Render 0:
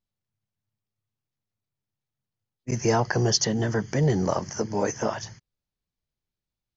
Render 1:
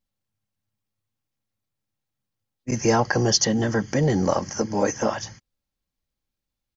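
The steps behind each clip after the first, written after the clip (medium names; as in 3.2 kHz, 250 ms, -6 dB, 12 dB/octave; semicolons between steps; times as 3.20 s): comb 3.7 ms, depth 34%; trim +3 dB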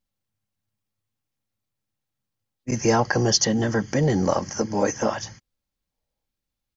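time-frequency box 5.92–6.25 s, 430–1000 Hz +8 dB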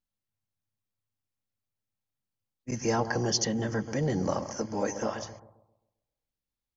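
bucket-brigade echo 132 ms, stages 1024, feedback 39%, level -10 dB; trim -8 dB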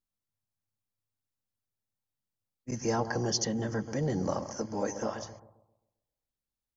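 peaking EQ 2.5 kHz -4.5 dB 0.98 oct; trim -2 dB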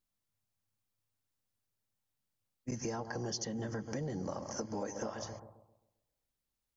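compression 10:1, threshold -38 dBFS, peak gain reduction 14.5 dB; trim +3 dB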